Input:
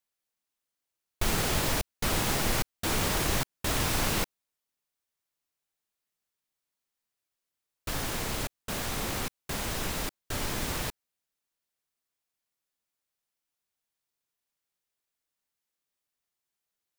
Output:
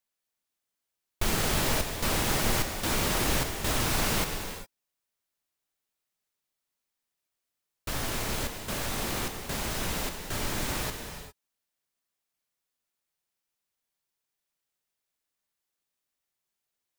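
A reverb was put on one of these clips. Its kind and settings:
reverb whose tail is shaped and stops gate 430 ms flat, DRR 5 dB

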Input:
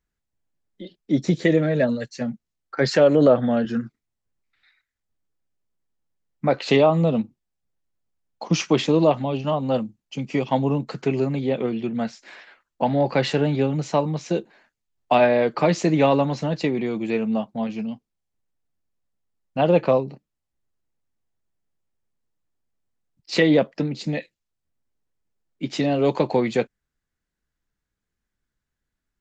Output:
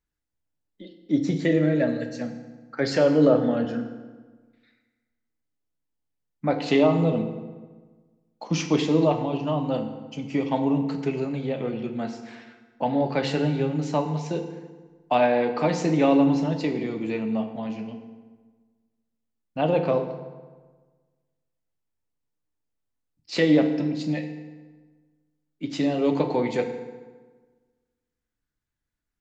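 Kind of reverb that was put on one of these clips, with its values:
feedback delay network reverb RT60 1.4 s, low-frequency decay 1.1×, high-frequency decay 0.7×, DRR 5 dB
level −5 dB

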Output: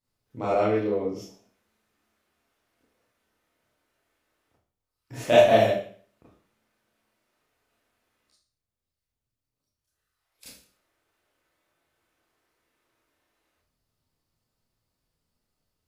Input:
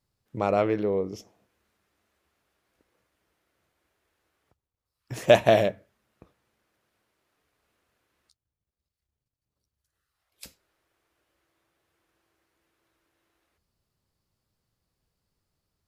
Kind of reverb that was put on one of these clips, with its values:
four-comb reverb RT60 0.47 s, combs from 25 ms, DRR −9 dB
level −9 dB

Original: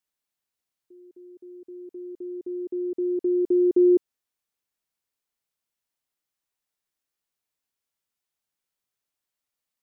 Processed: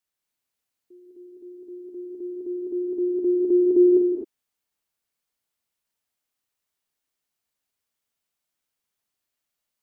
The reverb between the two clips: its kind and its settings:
reverb whose tail is shaped and stops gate 280 ms rising, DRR 0 dB

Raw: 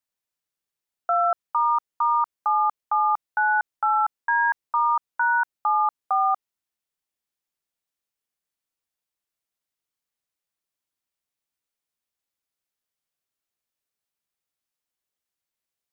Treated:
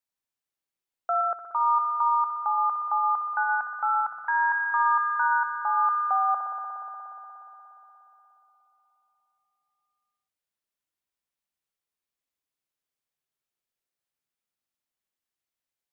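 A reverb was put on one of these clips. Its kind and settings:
spring reverb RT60 3.9 s, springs 59 ms, chirp 35 ms, DRR 2.5 dB
level −4 dB

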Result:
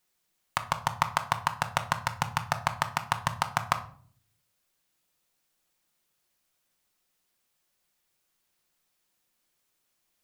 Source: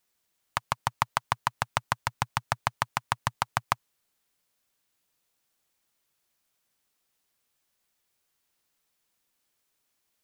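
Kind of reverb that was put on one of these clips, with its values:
rectangular room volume 570 cubic metres, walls furnished, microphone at 0.94 metres

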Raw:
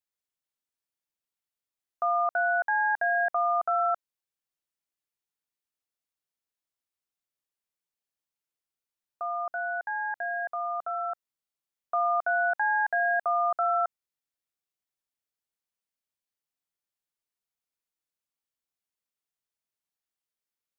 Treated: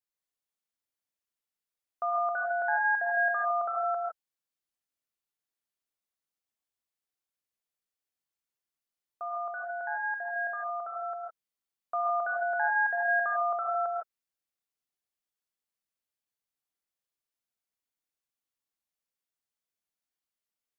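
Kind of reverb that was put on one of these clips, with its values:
reverb whose tail is shaped and stops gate 180 ms rising, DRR 0 dB
level −4.5 dB

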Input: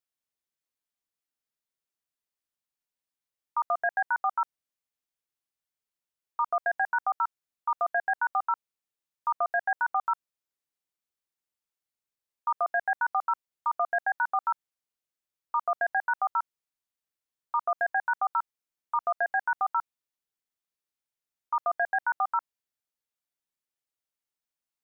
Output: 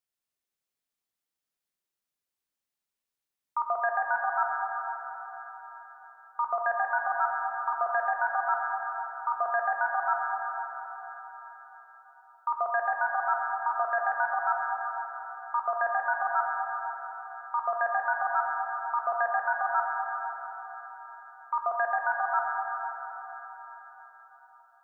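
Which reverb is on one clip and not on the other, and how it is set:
dense smooth reverb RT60 4.6 s, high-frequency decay 0.85×, DRR 0 dB
level −1 dB

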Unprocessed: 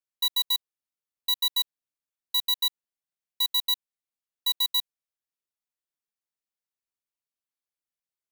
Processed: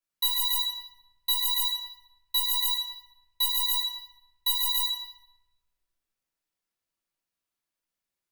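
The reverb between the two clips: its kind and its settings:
rectangular room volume 520 cubic metres, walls mixed, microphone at 3 metres
level −1.5 dB

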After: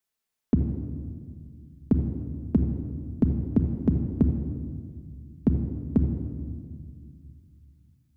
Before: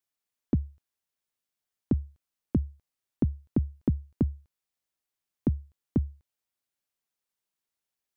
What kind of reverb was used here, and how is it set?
rectangular room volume 3,200 cubic metres, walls mixed, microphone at 1.5 metres
level +2.5 dB

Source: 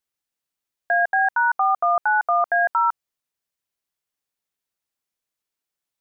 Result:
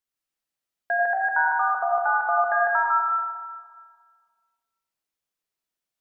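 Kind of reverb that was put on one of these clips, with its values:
comb and all-pass reverb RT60 1.7 s, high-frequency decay 0.7×, pre-delay 45 ms, DRR −1.5 dB
level −4.5 dB

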